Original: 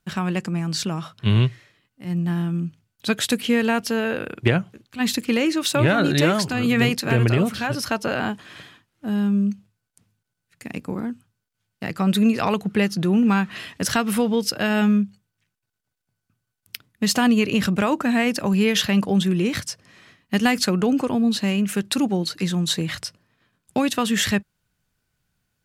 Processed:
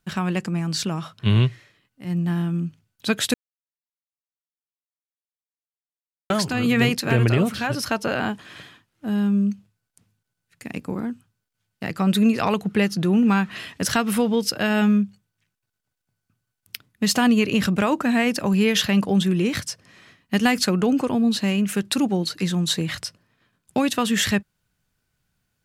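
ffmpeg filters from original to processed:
ffmpeg -i in.wav -filter_complex "[0:a]asplit=3[link_01][link_02][link_03];[link_01]atrim=end=3.34,asetpts=PTS-STARTPTS,afade=type=out:start_time=3.336:duration=0.004:curve=hsin[link_04];[link_02]atrim=start=3.34:end=6.3,asetpts=PTS-STARTPTS,volume=0[link_05];[link_03]atrim=start=6.3,asetpts=PTS-STARTPTS,afade=type=in:duration=0.004:curve=hsin[link_06];[link_04][link_05][link_06]concat=n=3:v=0:a=1" out.wav

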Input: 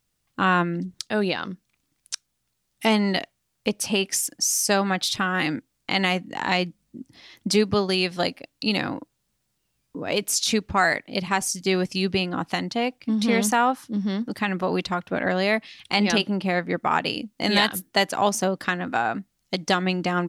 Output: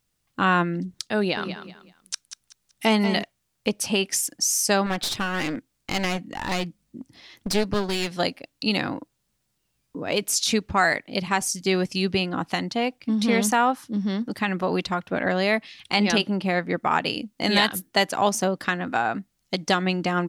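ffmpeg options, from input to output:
ffmpeg -i in.wav -filter_complex "[0:a]asettb=1/sr,asplit=3[link_01][link_02][link_03];[link_01]atrim=end=1.184[link_04];[link_02]atrim=start=1.18:end=3.23,asetpts=PTS-STARTPTS,afade=type=in:duration=0.004:curve=qsin,afade=type=out:start_time=2.046:duration=0.004:curve=qsin,aecho=1:1:189|378|567:0.316|0.0917|0.0266,atrim=end_sample=90405[link_05];[link_03]atrim=start=3.226[link_06];[link_04][link_05]acrossfade=duration=0.004:curve1=hsin:curve2=qsin[link_07];[link_07][link_06]acrossfade=duration=0.004:curve1=qsin:curve2=hsin,asettb=1/sr,asplit=3[link_08][link_09][link_10];[link_08]atrim=end=4.864[link_11];[link_09]atrim=start=4.86:end=8.12,asetpts=PTS-STARTPTS,afade=type=in:duration=0.004:curve=qsin,afade=type=out:start_time=3.256:duration=0.004:curve=qsin,aeval=exprs='clip(val(0),-1,0.0355)':channel_layout=same[link_12];[link_10]atrim=start=8.116[link_13];[link_11][link_12]acrossfade=duration=0.004:curve1=hsin:curve2=qsin[link_14];[link_14][link_13]acrossfade=duration=0.004:curve1=qsin:curve2=hsin" out.wav

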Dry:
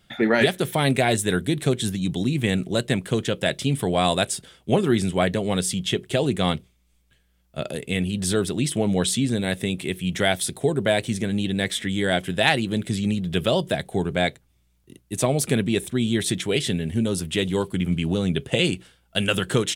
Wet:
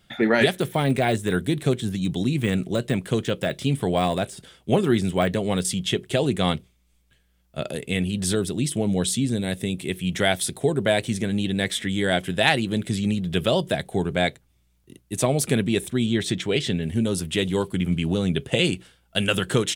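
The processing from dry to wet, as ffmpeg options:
ffmpeg -i in.wav -filter_complex "[0:a]asettb=1/sr,asplit=3[link_01][link_02][link_03];[link_01]atrim=end=0.594[link_04];[link_02]atrim=start=0.59:end=5.65,asetpts=PTS-STARTPTS,afade=type=in:duration=0.004:curve=qsin,afade=type=out:start_time=5.056:duration=0.004:curve=qsin,deesser=0.7[link_05];[link_03]atrim=start=5.646[link_06];[link_04][link_05]acrossfade=duration=0.004:curve1=hsin:curve2=qsin[link_07];[link_07][link_06]acrossfade=duration=0.004:curve1=qsin:curve2=hsin,asettb=1/sr,asplit=3[link_08][link_09][link_10];[link_08]atrim=end=8.354[link_11];[link_09]atrim=start=8.35:end=9.89,asetpts=PTS-STARTPTS,afade=type=in:duration=0.004:curve=qsin,afade=type=out:start_time=1.536:duration=0.004:curve=qsin,equalizer=frequency=1400:width_type=o:width=2.8:gain=-5.5[link_12];[link_10]atrim=start=9.886[link_13];[link_11][link_12]acrossfade=duration=0.004:curve1=hsin:curve2=qsin[link_14];[link_14][link_13]acrossfade=duration=0.004:curve1=qsin:curve2=hsin,asettb=1/sr,asplit=3[link_15][link_16][link_17];[link_15]atrim=end=16.064[link_18];[link_16]atrim=start=16.06:end=16.83,asetpts=PTS-STARTPTS,afade=type=in:duration=0.004:curve=qsin,afade=type=out:start_time=0.766:duration=0.004:curve=qsin,equalizer=frequency=11000:width_type=o:width=0.73:gain=-13[link_19];[link_17]atrim=start=16.826[link_20];[link_18][link_19]acrossfade=duration=0.004:curve1=hsin:curve2=qsin[link_21];[link_21][link_20]acrossfade=duration=0.004:curve1=qsin:curve2=hsin" out.wav

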